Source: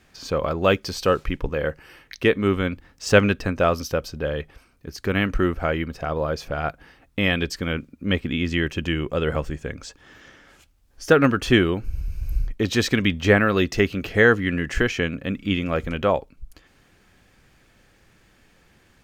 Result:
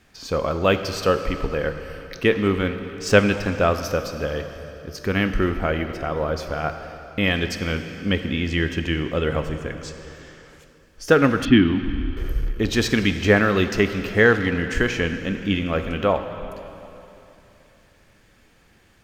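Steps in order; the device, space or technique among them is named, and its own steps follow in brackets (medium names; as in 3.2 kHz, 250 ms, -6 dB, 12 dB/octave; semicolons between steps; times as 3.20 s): saturated reverb return (on a send at -6 dB: reverberation RT60 2.9 s, pre-delay 3 ms + saturation -17.5 dBFS, distortion -13 dB); 11.45–12.17 s: on the sum: FFT filter 150 Hz 0 dB, 290 Hz +9 dB, 460 Hz -17 dB, 770 Hz -6 dB, 3.2 kHz -1 dB, 7.3 kHz -24 dB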